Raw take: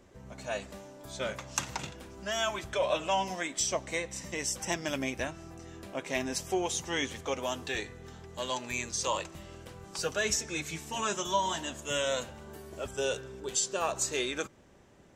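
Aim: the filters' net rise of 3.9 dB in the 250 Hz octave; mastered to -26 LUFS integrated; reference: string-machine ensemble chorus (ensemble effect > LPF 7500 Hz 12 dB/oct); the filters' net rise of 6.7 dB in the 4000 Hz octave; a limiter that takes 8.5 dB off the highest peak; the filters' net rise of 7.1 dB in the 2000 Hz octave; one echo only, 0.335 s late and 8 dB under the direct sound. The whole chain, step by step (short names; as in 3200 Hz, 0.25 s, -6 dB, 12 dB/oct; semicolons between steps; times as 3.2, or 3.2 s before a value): bell 250 Hz +5 dB; bell 2000 Hz +7 dB; bell 4000 Hz +6.5 dB; limiter -17.5 dBFS; echo 0.335 s -8 dB; ensemble effect; LPF 7500 Hz 12 dB/oct; gain +7.5 dB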